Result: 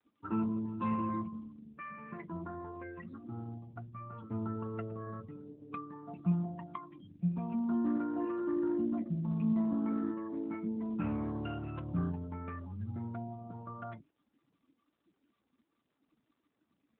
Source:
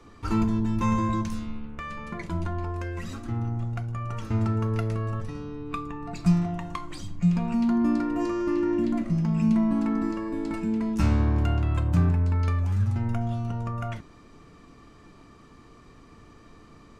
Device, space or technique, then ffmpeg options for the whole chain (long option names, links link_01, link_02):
mobile call with aggressive noise cancelling: -af "highpass=150,afftdn=noise_reduction=35:noise_floor=-37,volume=-7dB" -ar 8000 -c:a libopencore_amrnb -b:a 12200